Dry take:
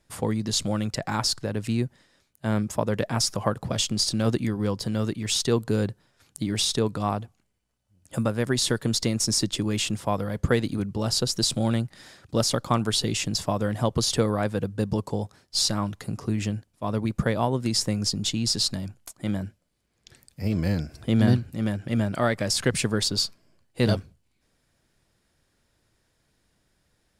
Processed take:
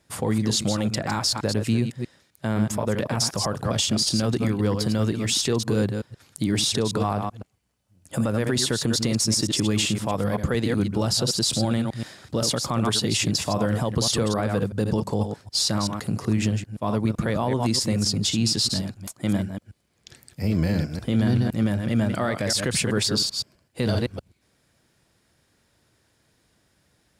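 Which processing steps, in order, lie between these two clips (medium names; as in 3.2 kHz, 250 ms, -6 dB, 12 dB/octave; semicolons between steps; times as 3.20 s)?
chunks repeated in reverse 128 ms, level -8 dB; high-pass 61 Hz; peak limiter -17.5 dBFS, peak gain reduction 10.5 dB; trim +4.5 dB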